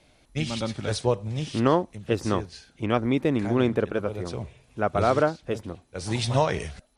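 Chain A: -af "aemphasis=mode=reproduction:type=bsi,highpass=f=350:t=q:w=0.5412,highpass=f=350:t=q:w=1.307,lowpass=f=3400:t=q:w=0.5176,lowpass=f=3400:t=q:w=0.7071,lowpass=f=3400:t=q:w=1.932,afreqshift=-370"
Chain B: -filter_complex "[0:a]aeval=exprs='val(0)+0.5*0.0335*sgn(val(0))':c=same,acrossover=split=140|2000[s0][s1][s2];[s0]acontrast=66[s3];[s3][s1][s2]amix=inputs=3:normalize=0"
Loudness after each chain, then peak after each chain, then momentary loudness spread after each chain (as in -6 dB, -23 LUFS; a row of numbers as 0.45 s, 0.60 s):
-29.0 LUFS, -23.5 LUFS; -9.5 dBFS, -5.0 dBFS; 16 LU, 8 LU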